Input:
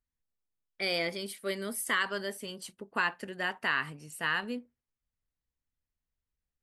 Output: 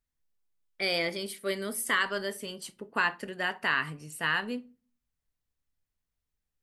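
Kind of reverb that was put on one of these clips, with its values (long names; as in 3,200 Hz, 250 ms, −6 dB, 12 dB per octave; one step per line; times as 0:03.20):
rectangular room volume 200 cubic metres, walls furnished, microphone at 0.33 metres
level +2 dB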